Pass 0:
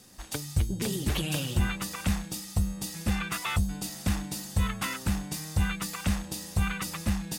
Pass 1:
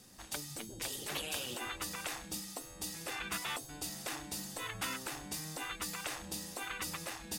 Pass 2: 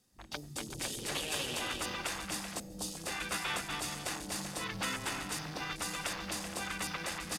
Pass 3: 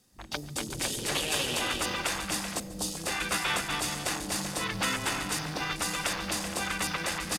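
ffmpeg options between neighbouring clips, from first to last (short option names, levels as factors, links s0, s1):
-af "afftfilt=real='re*lt(hypot(re,im),0.1)':imag='im*lt(hypot(re,im),0.1)':win_size=1024:overlap=0.75,volume=0.631"
-af "aecho=1:1:240|384|470.4|522.2|553.3:0.631|0.398|0.251|0.158|0.1,afwtdn=0.00447,volume=1.26"
-af "aecho=1:1:142|284|426|568:0.112|0.0505|0.0227|0.0102,volume=2.11"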